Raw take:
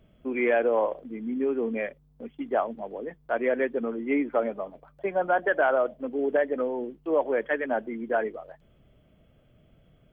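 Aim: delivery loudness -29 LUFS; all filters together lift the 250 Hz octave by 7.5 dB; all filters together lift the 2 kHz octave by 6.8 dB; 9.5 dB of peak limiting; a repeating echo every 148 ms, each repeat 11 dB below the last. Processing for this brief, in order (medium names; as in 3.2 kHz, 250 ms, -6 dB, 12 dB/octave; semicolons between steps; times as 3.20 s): peaking EQ 250 Hz +8.5 dB; peaking EQ 2 kHz +8.5 dB; peak limiter -17.5 dBFS; feedback delay 148 ms, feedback 28%, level -11 dB; trim -2 dB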